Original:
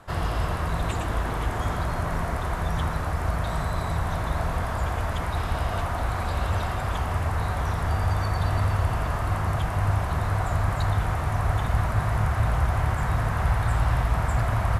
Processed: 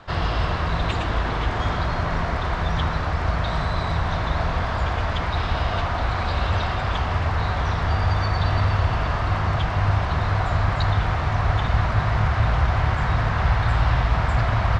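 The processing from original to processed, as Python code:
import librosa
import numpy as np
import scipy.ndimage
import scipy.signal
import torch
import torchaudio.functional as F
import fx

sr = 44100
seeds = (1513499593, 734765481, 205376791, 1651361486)

y = scipy.signal.sosfilt(scipy.signal.butter(4, 4600.0, 'lowpass', fs=sr, output='sos'), x)
y = fx.high_shelf(y, sr, hz=3400.0, db=11.0)
y = F.gain(torch.from_numpy(y), 3.0).numpy()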